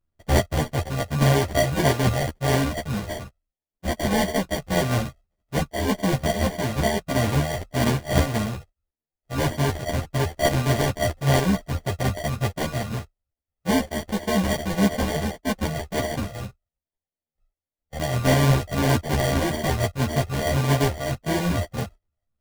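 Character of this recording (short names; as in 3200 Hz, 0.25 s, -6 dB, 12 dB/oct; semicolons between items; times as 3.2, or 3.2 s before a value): a buzz of ramps at a fixed pitch in blocks of 64 samples; phasing stages 4, 1.7 Hz, lowest notch 320–2400 Hz; aliases and images of a low sample rate 1300 Hz, jitter 0%; a shimmering, thickened sound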